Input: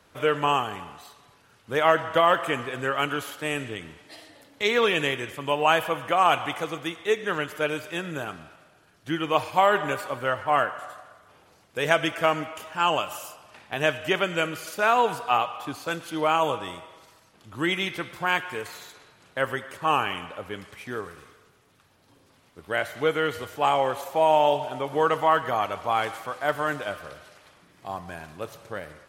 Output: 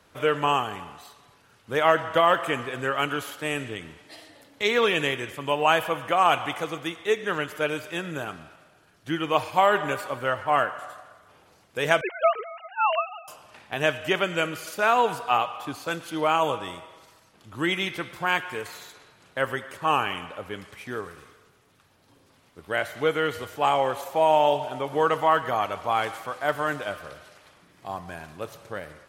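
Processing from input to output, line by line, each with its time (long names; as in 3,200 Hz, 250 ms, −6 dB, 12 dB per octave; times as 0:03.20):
0:12.01–0:13.28: three sine waves on the formant tracks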